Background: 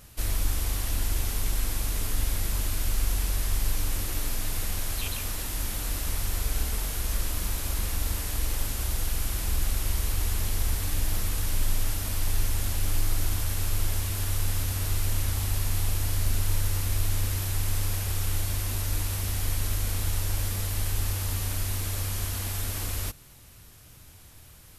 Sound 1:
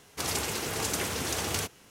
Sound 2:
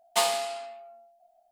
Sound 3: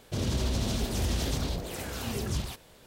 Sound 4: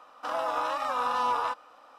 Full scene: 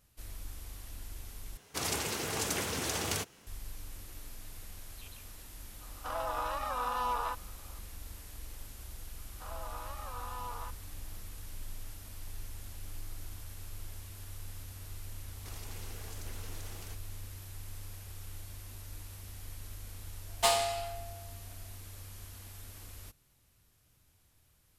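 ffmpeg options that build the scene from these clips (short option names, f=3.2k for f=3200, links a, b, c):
-filter_complex "[1:a]asplit=2[a][b];[4:a]asplit=2[c][d];[0:a]volume=-17.5dB[e];[b]acompressor=threshold=-39dB:ratio=6:attack=3.2:release=140:knee=1:detection=peak[f];[e]asplit=2[g][h];[g]atrim=end=1.574[i];[a]atrim=end=1.9,asetpts=PTS-STARTPTS,volume=-3dB[j];[h]atrim=start=3.466[k];[c]atrim=end=1.98,asetpts=PTS-STARTPTS,volume=-6dB,afade=t=in:d=0.004:c=hsin,afade=t=out:st=1.976:d=0.004:c=hsin,adelay=256221S[l];[d]atrim=end=1.98,asetpts=PTS-STARTPTS,volume=-15.5dB,afade=t=in:d=0.004:c=hsin,afade=t=out:st=1.976:d=0.004:c=hsin,adelay=9170[m];[f]atrim=end=1.9,asetpts=PTS-STARTPTS,volume=-8.5dB,afade=t=in:d=0.004:c=hsin,afade=t=out:st=1.896:d=0.004:c=hsin,adelay=15280[n];[2:a]atrim=end=1.51,asetpts=PTS-STARTPTS,volume=-2.5dB,afade=t=in:d=0.004:c=hsin,afade=t=out:st=1.506:d=0.004:c=hsin,adelay=20270[o];[i][j]acrossfade=d=0.004:c1=hsin:c2=hsin[p];[p][k]acrossfade=d=0.004:c1=hsin:c2=hsin[q];[q][l][m][n][o]amix=inputs=5:normalize=0"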